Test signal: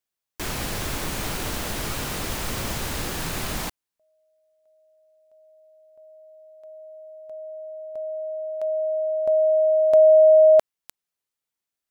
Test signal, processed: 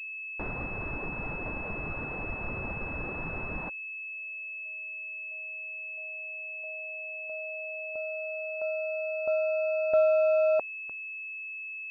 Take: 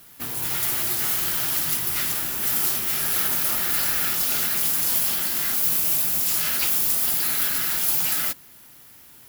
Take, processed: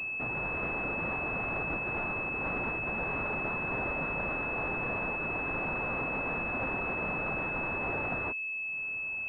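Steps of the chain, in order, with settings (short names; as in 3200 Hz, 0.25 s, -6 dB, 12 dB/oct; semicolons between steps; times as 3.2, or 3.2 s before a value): reverb removal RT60 1 s; in parallel at +1 dB: compressor, threshold -37 dBFS; on the sum: pulse-width modulation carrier 2600 Hz; gain -7.5 dB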